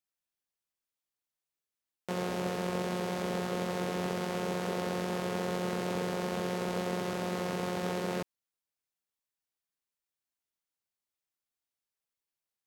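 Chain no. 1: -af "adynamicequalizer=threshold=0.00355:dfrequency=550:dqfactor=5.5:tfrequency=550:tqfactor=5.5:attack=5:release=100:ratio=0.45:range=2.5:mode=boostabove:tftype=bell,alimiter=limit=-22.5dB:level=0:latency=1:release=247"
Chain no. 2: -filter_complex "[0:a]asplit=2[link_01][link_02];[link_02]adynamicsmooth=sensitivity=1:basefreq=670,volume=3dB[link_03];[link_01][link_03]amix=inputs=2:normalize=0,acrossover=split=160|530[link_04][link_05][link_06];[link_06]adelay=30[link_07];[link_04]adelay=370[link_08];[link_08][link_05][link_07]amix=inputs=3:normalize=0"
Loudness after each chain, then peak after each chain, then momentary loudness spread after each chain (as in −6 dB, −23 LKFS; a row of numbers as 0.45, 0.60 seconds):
−34.5, −31.5 LKFS; −22.5, −17.0 dBFS; 1, 3 LU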